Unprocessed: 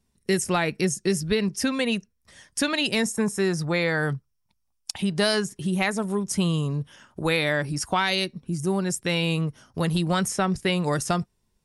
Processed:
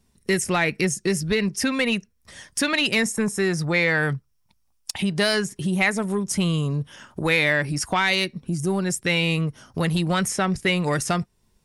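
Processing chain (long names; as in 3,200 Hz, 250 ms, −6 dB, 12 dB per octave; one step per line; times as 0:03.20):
in parallel at +2 dB: downward compressor, threshold −36 dBFS, peak gain reduction 16.5 dB
on the sum: soft clipping −12.5 dBFS, distortion −21 dB
dynamic equaliser 2,100 Hz, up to +7 dB, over −42 dBFS, Q 2.1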